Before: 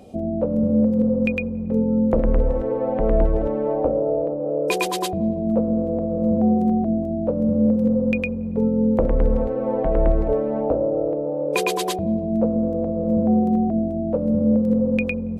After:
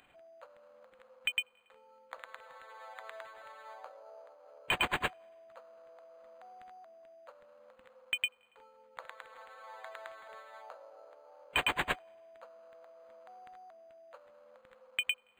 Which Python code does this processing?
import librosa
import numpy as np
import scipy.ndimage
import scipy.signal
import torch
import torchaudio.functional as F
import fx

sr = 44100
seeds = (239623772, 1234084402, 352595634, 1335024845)

y = scipy.signal.sosfilt(scipy.signal.butter(4, 1400.0, 'highpass', fs=sr, output='sos'), x)
y = np.interp(np.arange(len(y)), np.arange(len(y))[::8], y[::8])